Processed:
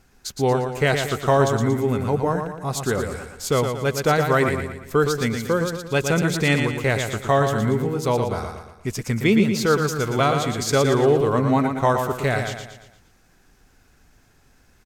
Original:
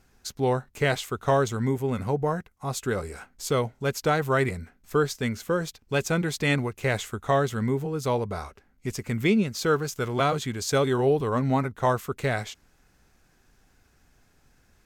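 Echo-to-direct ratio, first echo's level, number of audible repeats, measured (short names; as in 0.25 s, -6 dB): -5.0 dB, -6.0 dB, 5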